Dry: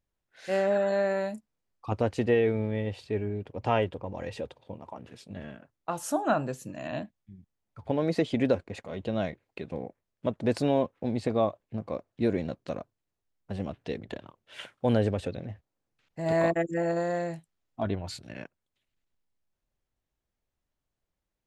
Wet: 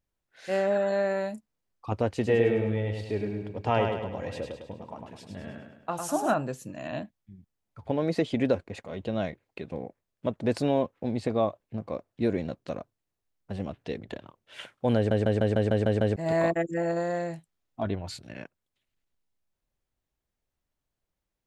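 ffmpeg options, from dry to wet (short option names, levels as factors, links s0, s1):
-filter_complex "[0:a]asettb=1/sr,asplit=3[s0][s1][s2];[s0]atrim=end=2.124[s3];[s1]atrim=start=2.12:end=6.34,asetpts=PTS-STARTPTS,afade=t=in:d=0.004:c=qsin,afade=t=out:st=4.216:d=0.004:c=qsin,aecho=1:1:103|206|309|412|515|618:0.562|0.27|0.13|0.0622|0.0299|0.0143,atrim=end_sample=186102[s4];[s2]atrim=start=6.336[s5];[s3][s4]acrossfade=d=0.004:c1=hsin:c2=qsin[s6];[s6][s5]acrossfade=d=0.004:c1=qsin:c2=hsin,asplit=9[s7][s8][s9][s10][s11][s12][s13][s14][s15];[s7]atrim=end=15.112[s16];[s8]atrim=start=14.958:end=15.112[s17];[s9]atrim=start=14.958:end=15.112[s18];[s10]atrim=start=14.958:end=15.112[s19];[s11]atrim=start=14.958:end=15.112[s20];[s12]atrim=start=14.958:end=15.112[s21];[s13]atrim=start=14.958:end=15.112[s22];[s14]atrim=start=14.958:end=15.112[s23];[s15]atrim=start=16.158[s24];[s16][s17]acrossfade=d=0.004:c1=hsin:c2=hsin[s25];[s25][s18]acrossfade=d=0.004:c1=hsin:c2=hsin[s26];[s26][s19]acrossfade=d=0.004:c1=hsin:c2=hsin[s27];[s27][s20]acrossfade=d=0.004:c1=hsin:c2=hsin[s28];[s28][s21]acrossfade=d=0.004:c1=hsin:c2=hsin[s29];[s29][s22]acrossfade=d=0.004:c1=hsin:c2=hsin[s30];[s30][s23]acrossfade=d=0.004:c1=hsin:c2=hsin[s31];[s31][s24]acrossfade=d=0.004:c1=hsin:c2=hsin"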